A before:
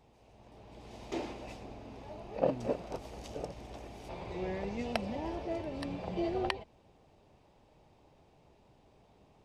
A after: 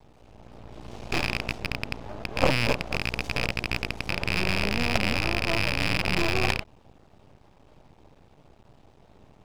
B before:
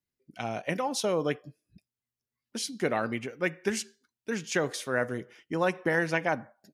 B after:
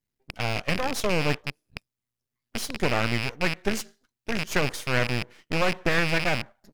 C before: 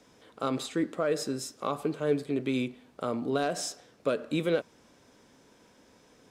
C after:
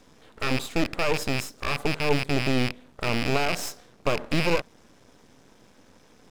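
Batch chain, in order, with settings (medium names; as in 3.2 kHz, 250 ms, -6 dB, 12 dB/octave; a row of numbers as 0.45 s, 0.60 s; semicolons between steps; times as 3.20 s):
rattle on loud lows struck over -45 dBFS, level -19 dBFS; tone controls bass +5 dB, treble -1 dB; half-wave rectifier; normalise loudness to -27 LUFS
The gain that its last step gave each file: +9.5 dB, +5.5 dB, +6.5 dB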